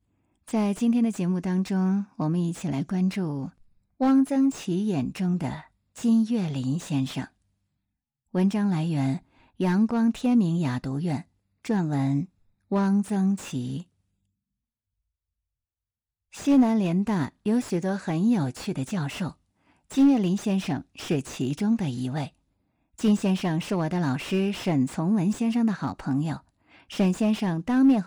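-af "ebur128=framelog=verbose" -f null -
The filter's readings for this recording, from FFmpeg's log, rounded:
Integrated loudness:
  I:         -25.6 LUFS
  Threshold: -36.0 LUFS
Loudness range:
  LRA:         3.3 LU
  Threshold: -46.7 LUFS
  LRA low:   -28.7 LUFS
  LRA high:  -25.3 LUFS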